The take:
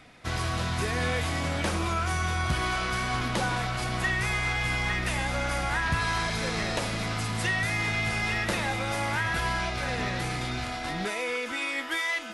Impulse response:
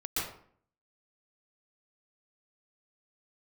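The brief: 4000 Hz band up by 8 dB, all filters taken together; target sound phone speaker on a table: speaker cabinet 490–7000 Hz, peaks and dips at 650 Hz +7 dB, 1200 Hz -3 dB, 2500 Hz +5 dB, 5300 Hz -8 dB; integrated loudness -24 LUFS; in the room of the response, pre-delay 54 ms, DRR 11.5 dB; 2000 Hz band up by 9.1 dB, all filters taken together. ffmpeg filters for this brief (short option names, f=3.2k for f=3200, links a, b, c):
-filter_complex "[0:a]equalizer=f=2k:t=o:g=7,equalizer=f=4k:t=o:g=8,asplit=2[a][b];[1:a]atrim=start_sample=2205,adelay=54[c];[b][c]afir=irnorm=-1:irlink=0,volume=-17dB[d];[a][d]amix=inputs=2:normalize=0,highpass=f=490:w=0.5412,highpass=f=490:w=1.3066,equalizer=f=650:t=q:w=4:g=7,equalizer=f=1.2k:t=q:w=4:g=-3,equalizer=f=2.5k:t=q:w=4:g=5,equalizer=f=5.3k:t=q:w=4:g=-8,lowpass=f=7k:w=0.5412,lowpass=f=7k:w=1.3066,volume=-3dB"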